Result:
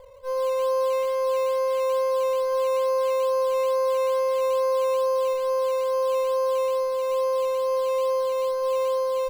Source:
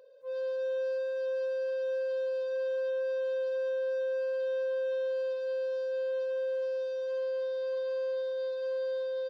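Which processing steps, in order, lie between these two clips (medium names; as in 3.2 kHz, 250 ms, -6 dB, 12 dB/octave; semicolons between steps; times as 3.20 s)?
comb filter that takes the minimum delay 1.5 ms; treble shelf 3.8 kHz -11 dB; in parallel at -9 dB: decimation with a swept rate 11×, swing 60% 2.3 Hz; on the sum: trim +8 dB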